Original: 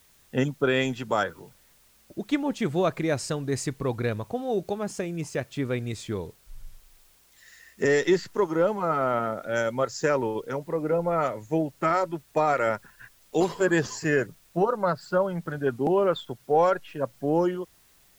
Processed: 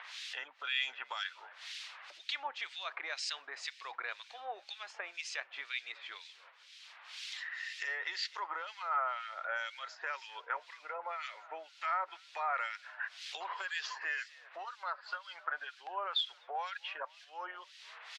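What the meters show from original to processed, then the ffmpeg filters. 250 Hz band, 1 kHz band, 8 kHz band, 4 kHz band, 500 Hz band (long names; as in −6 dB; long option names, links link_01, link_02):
below −40 dB, −9.5 dB, −12.0 dB, +1.0 dB, −25.5 dB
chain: -filter_complex "[0:a]aemphasis=mode=production:type=75fm,alimiter=limit=-19dB:level=0:latency=1:release=37,lowpass=frequency=4200:width=0.5412,lowpass=frequency=4200:width=1.3066,acompressor=threshold=-54dB:ratio=2,asplit=4[link_01][link_02][link_03][link_04];[link_02]adelay=255,afreqshift=59,volume=-23dB[link_05];[link_03]adelay=510,afreqshift=118,volume=-29.9dB[link_06];[link_04]adelay=765,afreqshift=177,volume=-36.9dB[link_07];[link_01][link_05][link_06][link_07]amix=inputs=4:normalize=0,acompressor=mode=upward:threshold=-52dB:ratio=2.5,highpass=frequency=860:width=0.5412,highpass=frequency=860:width=1.3066,equalizer=frequency=2500:width_type=o:width=1.8:gain=4.5,acrossover=split=1900[link_08][link_09];[link_08]aeval=exprs='val(0)*(1-1/2+1/2*cos(2*PI*2*n/s))':channel_layout=same[link_10];[link_09]aeval=exprs='val(0)*(1-1/2-1/2*cos(2*PI*2*n/s))':channel_layout=same[link_11];[link_10][link_11]amix=inputs=2:normalize=0,volume=15dB"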